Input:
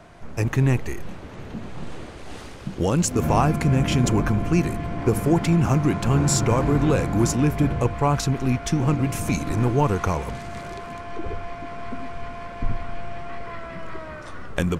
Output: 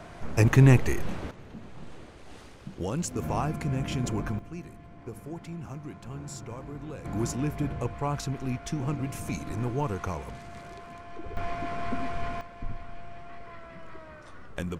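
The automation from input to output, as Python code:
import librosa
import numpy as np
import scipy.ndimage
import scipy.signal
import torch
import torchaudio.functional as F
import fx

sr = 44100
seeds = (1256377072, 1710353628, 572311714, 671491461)

y = fx.gain(x, sr, db=fx.steps((0.0, 2.5), (1.31, -10.0), (4.39, -20.0), (7.05, -9.5), (11.37, 1.0), (12.41, -10.5)))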